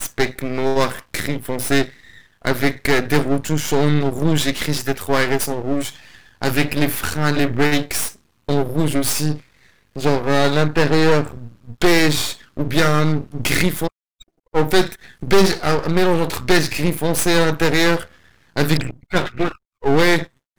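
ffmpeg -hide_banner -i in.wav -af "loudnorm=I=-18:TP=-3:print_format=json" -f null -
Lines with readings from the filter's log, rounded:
"input_i" : "-19.3",
"input_tp" : "-3.8",
"input_lra" : "3.1",
"input_thresh" : "-29.8",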